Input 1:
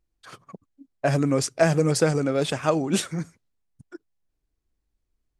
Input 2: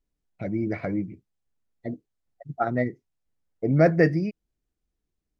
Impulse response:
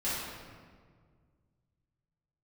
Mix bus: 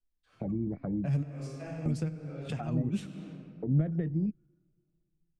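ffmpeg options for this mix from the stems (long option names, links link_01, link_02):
-filter_complex "[0:a]highshelf=frequency=6500:gain=-4.5,flanger=delay=4.1:depth=5.9:regen=69:speed=0.8:shape=sinusoidal,equalizer=frequency=2600:width_type=o:width=0.59:gain=7.5,volume=-4dB,asplit=2[link_01][link_02];[link_02]volume=-20dB[link_03];[1:a]highpass=230,afwtdn=0.0316,acompressor=threshold=-23dB:ratio=6,volume=2dB,asplit=2[link_04][link_05];[link_05]apad=whole_len=237934[link_06];[link_01][link_06]sidechaingate=range=-33dB:threshold=-51dB:ratio=16:detection=peak[link_07];[2:a]atrim=start_sample=2205[link_08];[link_03][link_08]afir=irnorm=-1:irlink=0[link_09];[link_07][link_04][link_09]amix=inputs=3:normalize=0,lowshelf=frequency=220:gain=11,acrossover=split=190[link_10][link_11];[link_11]acompressor=threshold=-39dB:ratio=10[link_12];[link_10][link_12]amix=inputs=2:normalize=0"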